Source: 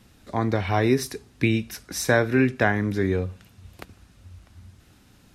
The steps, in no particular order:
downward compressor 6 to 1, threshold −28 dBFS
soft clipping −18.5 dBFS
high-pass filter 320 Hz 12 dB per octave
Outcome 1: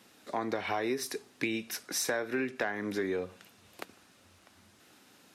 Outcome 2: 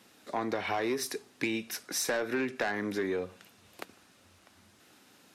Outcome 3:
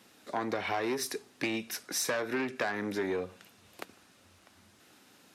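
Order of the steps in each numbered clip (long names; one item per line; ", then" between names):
high-pass filter, then downward compressor, then soft clipping
high-pass filter, then soft clipping, then downward compressor
soft clipping, then high-pass filter, then downward compressor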